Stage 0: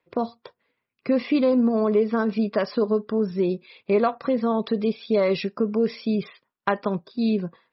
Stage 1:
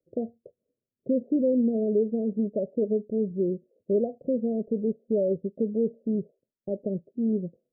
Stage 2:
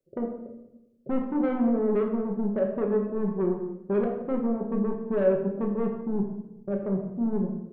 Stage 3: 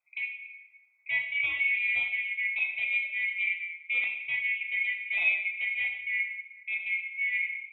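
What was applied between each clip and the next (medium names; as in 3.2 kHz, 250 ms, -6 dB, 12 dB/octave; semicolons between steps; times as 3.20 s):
steep low-pass 620 Hz 72 dB/octave; trim -3.5 dB
saturation -24 dBFS, distortion -13 dB; simulated room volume 340 m³, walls mixed, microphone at 1.1 m
split-band scrambler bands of 2 kHz; high-order bell 920 Hz +14.5 dB; trim -4.5 dB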